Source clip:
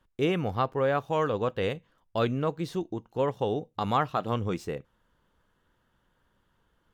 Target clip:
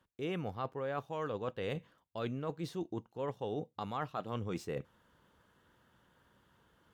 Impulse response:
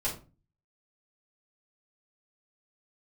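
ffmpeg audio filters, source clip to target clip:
-af "highpass=74,areverse,acompressor=threshold=-40dB:ratio=5,areverse,volume=3.5dB"

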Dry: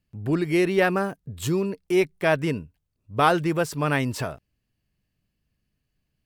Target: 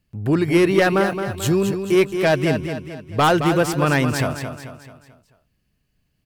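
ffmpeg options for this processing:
-af "aeval=exprs='0.596*(cos(1*acos(clip(val(0)/0.596,-1,1)))-cos(1*PI/2))+0.266*(cos(5*acos(clip(val(0)/0.596,-1,1)))-cos(5*PI/2))':c=same,aecho=1:1:219|438|657|876|1095:0.398|0.179|0.0806|0.0363|0.0163,volume=-4dB"

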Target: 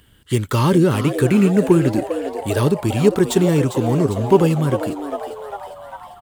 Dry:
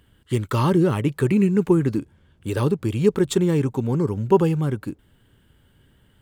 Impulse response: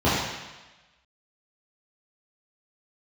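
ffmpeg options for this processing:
-filter_complex "[0:a]highshelf=f=2.3k:g=7.5,acrossover=split=770[a][b];[b]asoftclip=type=tanh:threshold=-23dB[c];[a][c]amix=inputs=2:normalize=0,asplit=8[d][e][f][g][h][i][j][k];[e]adelay=400,afreqshift=140,volume=-10.5dB[l];[f]adelay=800,afreqshift=280,volume=-15.1dB[m];[g]adelay=1200,afreqshift=420,volume=-19.7dB[n];[h]adelay=1600,afreqshift=560,volume=-24.2dB[o];[i]adelay=2000,afreqshift=700,volume=-28.8dB[p];[j]adelay=2400,afreqshift=840,volume=-33.4dB[q];[k]adelay=2800,afreqshift=980,volume=-38dB[r];[d][l][m][n][o][p][q][r]amix=inputs=8:normalize=0,volume=3.5dB"

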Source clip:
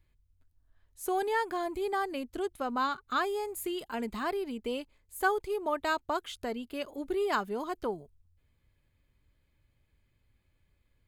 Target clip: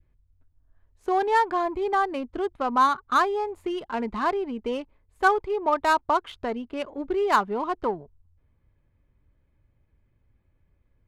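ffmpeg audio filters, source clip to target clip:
-af "adynamicsmooth=sensitivity=6.5:basefreq=1.7k,adynamicequalizer=threshold=0.00562:dfrequency=1000:dqfactor=2.1:tfrequency=1000:tqfactor=2.1:attack=5:release=100:ratio=0.375:range=3.5:mode=boostabove:tftype=bell,volume=5.5dB"

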